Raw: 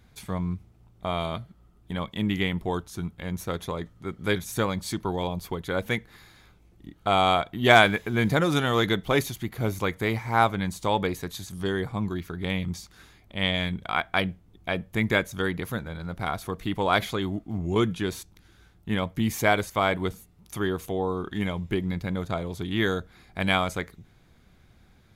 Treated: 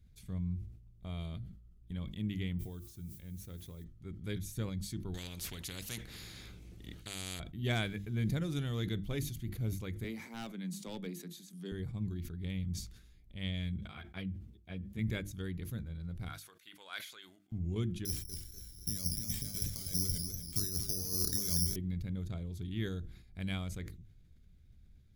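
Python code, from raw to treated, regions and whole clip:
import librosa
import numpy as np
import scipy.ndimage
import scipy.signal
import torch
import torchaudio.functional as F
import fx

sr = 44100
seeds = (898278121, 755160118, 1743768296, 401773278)

y = fx.highpass(x, sr, hz=42.0, slope=12, at=(2.58, 3.83), fade=0.02)
y = fx.comb_fb(y, sr, f0_hz=390.0, decay_s=0.65, harmonics='all', damping=0.0, mix_pct=50, at=(2.58, 3.83), fade=0.02)
y = fx.dmg_noise_colour(y, sr, seeds[0], colour='violet', level_db=-52.0, at=(2.58, 3.83), fade=0.02)
y = fx.chain(y, sr, fx.highpass(hz=340.0, slope=6),
    fx.high_shelf(hz=12000.0, db=-9.0),
    fx.spectral_comp(ratio=4.0), at=(5.14, 7.4))
y = fx.chain(y, sr, fx.steep_highpass(hz=160.0, slope=96),
    fx.overload_stage(gain_db=17.0), at=(10.04, 11.72))
y = fx.chain(y, sr, fx.highpass(hz=64.0, slope=24),
    fx.high_shelf(hz=4700.0, db=-4.5),
    fx.ensemble(), at=(13.78, 14.99))
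y = fx.chain(y, sr, fx.highpass(hz=1100.0, slope=12),
    fx.peak_eq(hz=1500.0, db=7.0, octaves=0.21), at=(16.29, 17.52))
y = fx.chain(y, sr, fx.over_compress(threshold_db=-31.0, ratio=-0.5),
    fx.resample_bad(factor=8, down='filtered', up='zero_stuff'),
    fx.echo_warbled(ms=243, feedback_pct=43, rate_hz=2.8, cents=119, wet_db=-6), at=(18.05, 21.76))
y = fx.tone_stack(y, sr, knobs='10-0-1')
y = fx.hum_notches(y, sr, base_hz=50, count=7)
y = fx.sustainer(y, sr, db_per_s=82.0)
y = y * librosa.db_to_amplitude(6.5)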